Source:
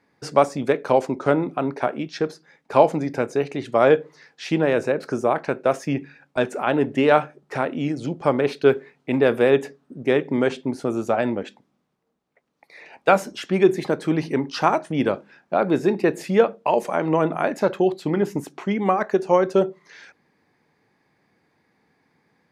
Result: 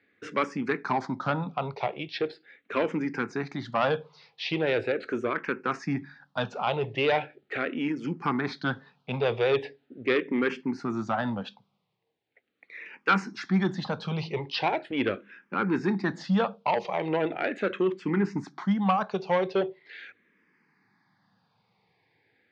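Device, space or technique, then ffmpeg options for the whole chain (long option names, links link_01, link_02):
barber-pole phaser into a guitar amplifier: -filter_complex "[0:a]asplit=2[link_01][link_02];[link_02]afreqshift=-0.4[link_03];[link_01][link_03]amix=inputs=2:normalize=1,asoftclip=type=tanh:threshold=-14.5dB,highpass=89,equalizer=frequency=110:width_type=q:width=4:gain=9,equalizer=frequency=190:width_type=q:width=4:gain=6,equalizer=frequency=610:width_type=q:width=4:gain=-5,lowpass=frequency=4500:width=0.5412,lowpass=frequency=4500:width=1.3066,tiltshelf=frequency=900:gain=-4.5"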